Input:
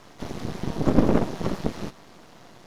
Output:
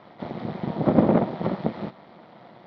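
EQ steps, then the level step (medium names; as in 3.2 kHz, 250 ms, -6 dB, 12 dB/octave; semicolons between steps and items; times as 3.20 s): distance through air 330 m; cabinet simulation 190–4400 Hz, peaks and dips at 280 Hz -7 dB, 420 Hz -7 dB, 1.1 kHz -5 dB, 1.6 kHz -7 dB, 2.7 kHz -9 dB; +7.0 dB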